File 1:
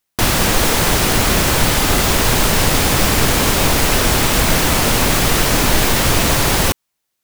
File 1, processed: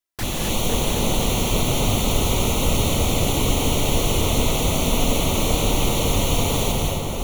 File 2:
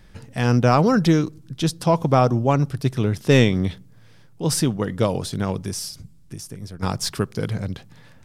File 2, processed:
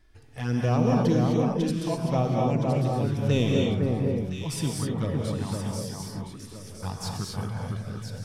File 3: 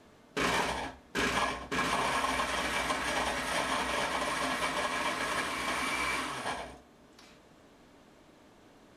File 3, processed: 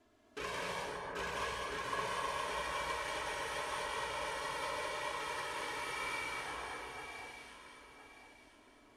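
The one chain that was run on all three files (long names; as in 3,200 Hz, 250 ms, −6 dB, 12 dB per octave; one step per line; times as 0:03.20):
flanger swept by the level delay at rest 3 ms, full sweep at −12 dBFS
delay that swaps between a low-pass and a high-pass 508 ms, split 1,800 Hz, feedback 55%, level −3 dB
reverb whose tail is shaped and stops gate 280 ms rising, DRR −0.5 dB
level −9 dB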